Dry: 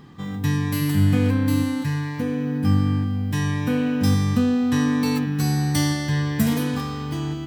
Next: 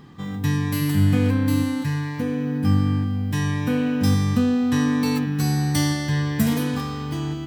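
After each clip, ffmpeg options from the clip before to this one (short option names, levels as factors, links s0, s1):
-af anull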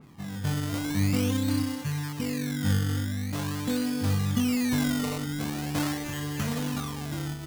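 -af "flanger=delay=0.7:depth=3.2:regen=-43:speed=0.43:shape=sinusoidal,acrusher=samples=18:mix=1:aa=0.000001:lfo=1:lforange=18:lforate=0.44,adynamicequalizer=threshold=0.00447:dfrequency=3100:dqfactor=0.7:tfrequency=3100:tqfactor=0.7:attack=5:release=100:ratio=0.375:range=2.5:mode=boostabove:tftype=highshelf,volume=0.708"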